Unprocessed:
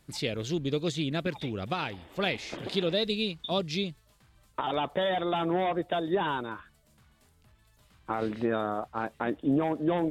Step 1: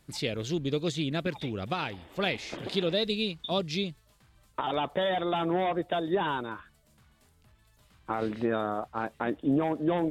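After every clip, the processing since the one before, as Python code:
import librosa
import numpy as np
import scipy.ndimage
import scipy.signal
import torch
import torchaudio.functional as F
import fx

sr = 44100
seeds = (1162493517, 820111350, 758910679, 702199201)

y = x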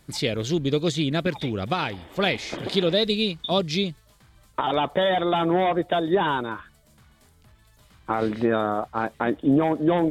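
y = fx.notch(x, sr, hz=2700.0, q=18.0)
y = y * librosa.db_to_amplitude(6.5)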